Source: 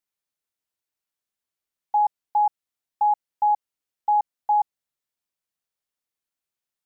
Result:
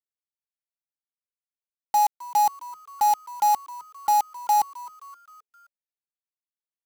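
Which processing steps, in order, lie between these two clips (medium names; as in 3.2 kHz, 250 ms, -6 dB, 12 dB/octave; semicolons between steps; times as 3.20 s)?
bit crusher 5-bit; on a send: frequency-shifting echo 262 ms, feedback 51%, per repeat +140 Hz, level -19 dB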